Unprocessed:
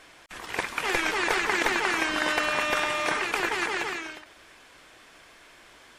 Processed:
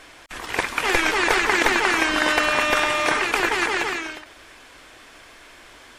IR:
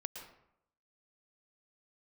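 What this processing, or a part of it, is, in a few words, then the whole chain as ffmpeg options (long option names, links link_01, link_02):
low shelf boost with a cut just above: -af "lowshelf=frequency=71:gain=5.5,equalizer=frequency=180:width_type=o:width=0.68:gain=-4,equalizer=frequency=260:width_type=o:width=0.37:gain=3,volume=6dB"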